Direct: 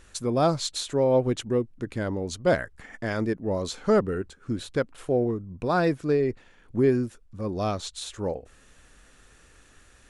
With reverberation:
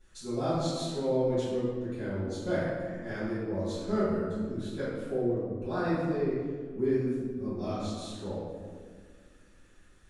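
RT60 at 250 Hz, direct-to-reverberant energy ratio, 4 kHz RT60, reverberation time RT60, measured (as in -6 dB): 2.8 s, -16.0 dB, 1.0 s, 1.8 s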